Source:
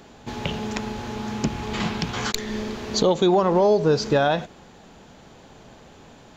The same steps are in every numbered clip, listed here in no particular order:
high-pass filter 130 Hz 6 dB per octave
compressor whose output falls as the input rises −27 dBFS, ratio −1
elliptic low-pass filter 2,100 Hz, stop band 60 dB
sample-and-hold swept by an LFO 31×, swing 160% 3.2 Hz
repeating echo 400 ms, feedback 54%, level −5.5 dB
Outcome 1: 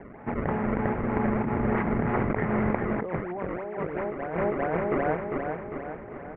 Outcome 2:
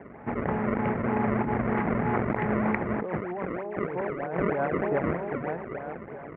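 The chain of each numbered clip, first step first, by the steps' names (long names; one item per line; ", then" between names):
high-pass filter, then sample-and-hold swept by an LFO, then repeating echo, then compressor whose output falls as the input rises, then elliptic low-pass filter
repeating echo, then sample-and-hold swept by an LFO, then elliptic low-pass filter, then compressor whose output falls as the input rises, then high-pass filter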